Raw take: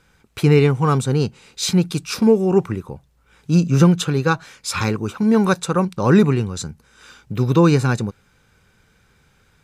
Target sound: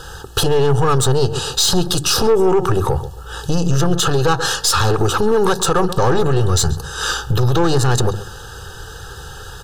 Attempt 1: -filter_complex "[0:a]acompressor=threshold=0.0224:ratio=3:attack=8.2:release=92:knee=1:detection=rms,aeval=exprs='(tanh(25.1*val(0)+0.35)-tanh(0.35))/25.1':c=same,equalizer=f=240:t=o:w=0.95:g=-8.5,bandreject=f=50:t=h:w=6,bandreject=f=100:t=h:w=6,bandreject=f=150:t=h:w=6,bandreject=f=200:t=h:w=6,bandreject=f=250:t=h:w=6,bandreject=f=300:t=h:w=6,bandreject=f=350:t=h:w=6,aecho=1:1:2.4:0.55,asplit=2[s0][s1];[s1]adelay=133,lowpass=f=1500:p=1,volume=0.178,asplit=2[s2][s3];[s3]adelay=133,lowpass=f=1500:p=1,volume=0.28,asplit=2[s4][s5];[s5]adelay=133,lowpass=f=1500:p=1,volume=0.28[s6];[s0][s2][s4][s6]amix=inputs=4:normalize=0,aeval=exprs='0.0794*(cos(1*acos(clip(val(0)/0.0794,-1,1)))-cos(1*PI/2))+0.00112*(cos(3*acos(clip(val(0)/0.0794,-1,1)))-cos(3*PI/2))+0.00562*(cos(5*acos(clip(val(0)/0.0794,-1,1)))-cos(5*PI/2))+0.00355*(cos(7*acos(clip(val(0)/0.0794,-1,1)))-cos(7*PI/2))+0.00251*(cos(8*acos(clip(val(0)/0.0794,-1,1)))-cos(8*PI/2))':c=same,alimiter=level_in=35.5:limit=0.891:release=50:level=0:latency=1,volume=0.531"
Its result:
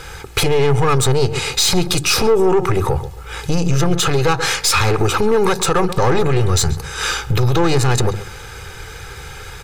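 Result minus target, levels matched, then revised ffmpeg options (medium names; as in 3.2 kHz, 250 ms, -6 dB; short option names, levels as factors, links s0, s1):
2 kHz band +2.5 dB
-filter_complex "[0:a]acompressor=threshold=0.0224:ratio=3:attack=8.2:release=92:knee=1:detection=rms,aeval=exprs='(tanh(25.1*val(0)+0.35)-tanh(0.35))/25.1':c=same,asuperstop=centerf=2200:order=8:qfactor=2.5,equalizer=f=240:t=o:w=0.95:g=-8.5,bandreject=f=50:t=h:w=6,bandreject=f=100:t=h:w=6,bandreject=f=150:t=h:w=6,bandreject=f=200:t=h:w=6,bandreject=f=250:t=h:w=6,bandreject=f=300:t=h:w=6,bandreject=f=350:t=h:w=6,aecho=1:1:2.4:0.55,asplit=2[s0][s1];[s1]adelay=133,lowpass=f=1500:p=1,volume=0.178,asplit=2[s2][s3];[s3]adelay=133,lowpass=f=1500:p=1,volume=0.28,asplit=2[s4][s5];[s5]adelay=133,lowpass=f=1500:p=1,volume=0.28[s6];[s0][s2][s4][s6]amix=inputs=4:normalize=0,aeval=exprs='0.0794*(cos(1*acos(clip(val(0)/0.0794,-1,1)))-cos(1*PI/2))+0.00112*(cos(3*acos(clip(val(0)/0.0794,-1,1)))-cos(3*PI/2))+0.00562*(cos(5*acos(clip(val(0)/0.0794,-1,1)))-cos(5*PI/2))+0.00355*(cos(7*acos(clip(val(0)/0.0794,-1,1)))-cos(7*PI/2))+0.00251*(cos(8*acos(clip(val(0)/0.0794,-1,1)))-cos(8*PI/2))':c=same,alimiter=level_in=35.5:limit=0.891:release=50:level=0:latency=1,volume=0.531"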